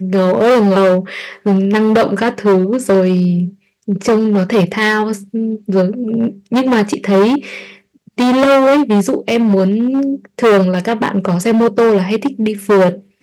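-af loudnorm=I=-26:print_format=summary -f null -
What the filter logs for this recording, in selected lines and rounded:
Input Integrated:    -13.4 LUFS
Input True Peak:      -2.2 dBTP
Input LRA:             2.3 LU
Input Threshold:     -23.7 LUFS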